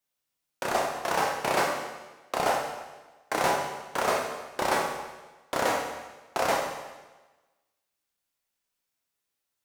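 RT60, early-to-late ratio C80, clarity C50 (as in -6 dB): 1.2 s, 5.5 dB, 3.5 dB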